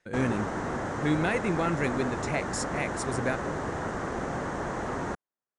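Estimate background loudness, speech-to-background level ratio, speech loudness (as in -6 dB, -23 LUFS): -33.0 LUFS, 2.0 dB, -31.0 LUFS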